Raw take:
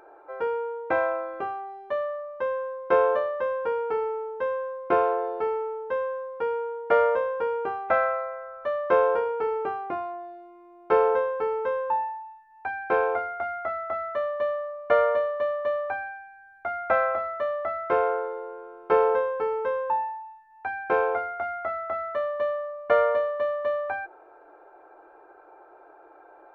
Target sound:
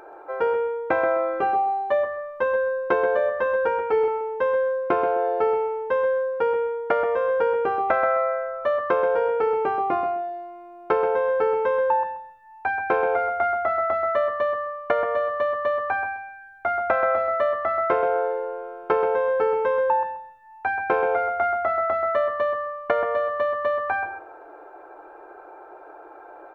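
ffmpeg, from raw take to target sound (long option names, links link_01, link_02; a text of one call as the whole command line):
ffmpeg -i in.wav -filter_complex "[0:a]acompressor=threshold=-25dB:ratio=12,asettb=1/sr,asplit=3[link_01][link_02][link_03];[link_01]atrim=end=1.414[link_04];[link_02]atrim=start=1.41:end=4.08,asetpts=PTS-STARTPTS,afade=type=in:duration=0.004:curve=qsin,afade=type=out:start_time=2.666:duration=0.004:curve=qsin,asplit=2[link_05][link_06];[link_06]adelay=14,volume=-5.5dB[link_07];[link_05][link_07]amix=inputs=2:normalize=0,atrim=end_sample=117747[link_08];[link_03]atrim=start=4.076[link_09];[link_04][link_08]acrossfade=duration=0.004:curve1=hsin:curve2=qsin[link_10];[link_10][link_09]acrossfade=duration=0.004:curve1=qsin:curve2=hsin,asplit=2[link_11][link_12];[link_12]adelay=130,lowpass=frequency=1700:poles=1,volume=-7dB,asplit=2[link_13][link_14];[link_14]adelay=130,lowpass=frequency=1700:poles=1,volume=0.23,asplit=2[link_15][link_16];[link_16]adelay=130,lowpass=frequency=1700:poles=1,volume=0.23[link_17];[link_11][link_13][link_15][link_17]amix=inputs=4:normalize=0,volume=7dB" out.wav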